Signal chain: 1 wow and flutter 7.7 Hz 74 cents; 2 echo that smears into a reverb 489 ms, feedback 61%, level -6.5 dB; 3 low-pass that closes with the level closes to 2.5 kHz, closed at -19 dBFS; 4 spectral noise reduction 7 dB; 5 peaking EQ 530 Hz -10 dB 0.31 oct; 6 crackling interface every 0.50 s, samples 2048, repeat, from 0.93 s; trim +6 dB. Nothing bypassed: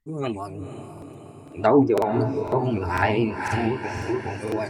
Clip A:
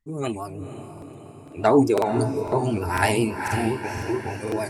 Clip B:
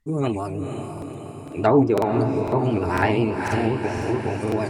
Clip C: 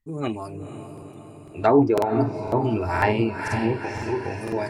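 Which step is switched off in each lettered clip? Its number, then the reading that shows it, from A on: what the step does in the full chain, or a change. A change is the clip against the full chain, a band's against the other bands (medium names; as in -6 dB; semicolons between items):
3, 4 kHz band +3.5 dB; 4, 125 Hz band +2.5 dB; 1, momentary loudness spread change -1 LU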